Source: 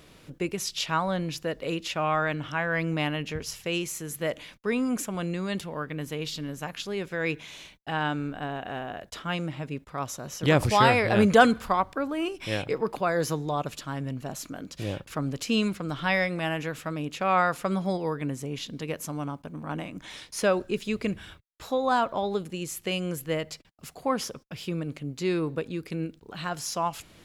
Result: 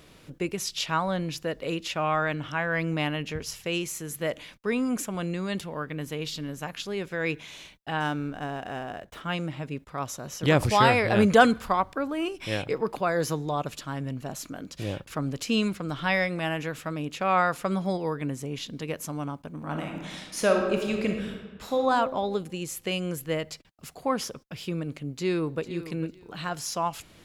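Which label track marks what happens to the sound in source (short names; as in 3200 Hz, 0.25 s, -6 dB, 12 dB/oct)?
8.000000	9.210000	median filter over 9 samples
19.560000	21.820000	reverb throw, RT60 1.4 s, DRR 2.5 dB
25.080000	25.620000	echo throw 0.45 s, feedback 20%, level -13.5 dB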